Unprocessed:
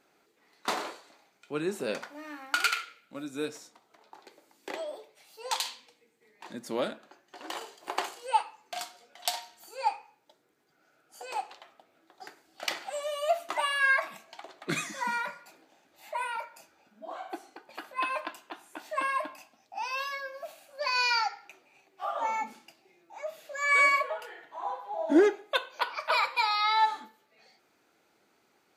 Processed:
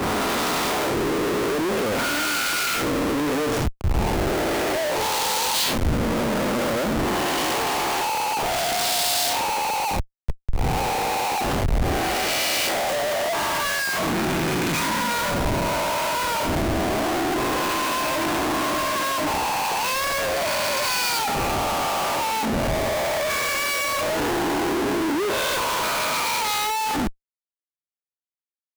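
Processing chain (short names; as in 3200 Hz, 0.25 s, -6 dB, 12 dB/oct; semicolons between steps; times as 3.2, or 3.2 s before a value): spectral swells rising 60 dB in 1.89 s; low shelf 460 Hz +10.5 dB; compressor 10:1, threshold -25 dBFS, peak gain reduction 17.5 dB; Schmitt trigger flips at -42 dBFS; three-band expander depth 70%; gain +8.5 dB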